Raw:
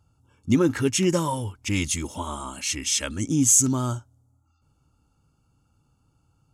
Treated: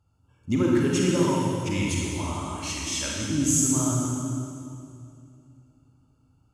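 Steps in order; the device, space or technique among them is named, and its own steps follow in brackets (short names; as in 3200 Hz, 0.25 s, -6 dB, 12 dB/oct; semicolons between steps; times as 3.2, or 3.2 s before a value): swimming-pool hall (reverb RT60 2.6 s, pre-delay 33 ms, DRR -3.5 dB; high shelf 5500 Hz -5 dB); gain -5.5 dB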